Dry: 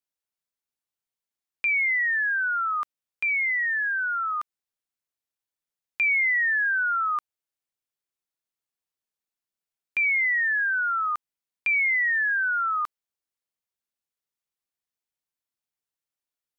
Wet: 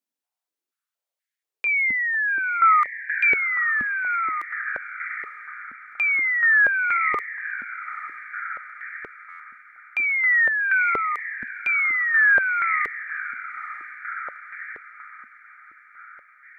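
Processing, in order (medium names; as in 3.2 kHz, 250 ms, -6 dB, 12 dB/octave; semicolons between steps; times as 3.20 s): echo that smears into a reverb 868 ms, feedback 50%, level -11.5 dB; buffer glitch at 9.29 s, samples 512, times 8; step-sequenced high-pass 4.2 Hz 240–1800 Hz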